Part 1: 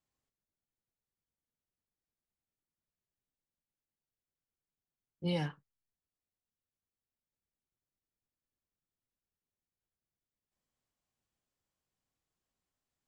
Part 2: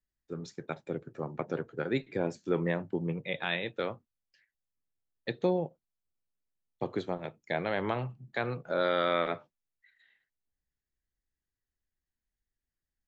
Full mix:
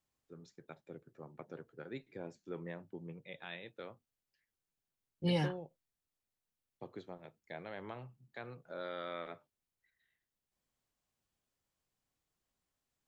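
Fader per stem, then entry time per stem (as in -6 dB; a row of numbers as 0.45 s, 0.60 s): +1.5 dB, -14.5 dB; 0.00 s, 0.00 s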